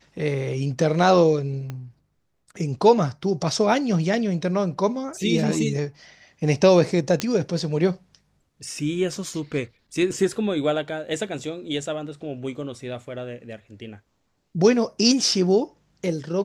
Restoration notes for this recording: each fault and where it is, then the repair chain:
1.70 s: pop -19 dBFS
7.20 s: pop -8 dBFS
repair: de-click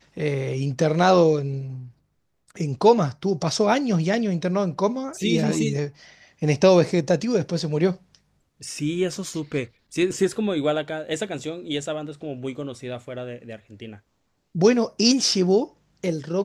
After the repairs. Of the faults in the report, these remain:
1.70 s: pop

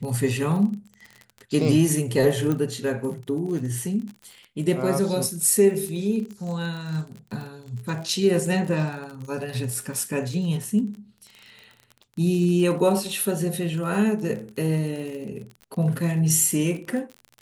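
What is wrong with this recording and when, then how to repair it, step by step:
crackle 39 per s -32 dBFS
2.52 s: pop -14 dBFS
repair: de-click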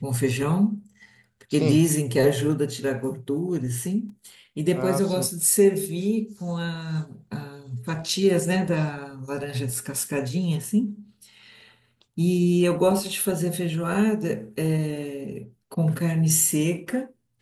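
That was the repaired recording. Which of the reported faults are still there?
2.52 s: pop

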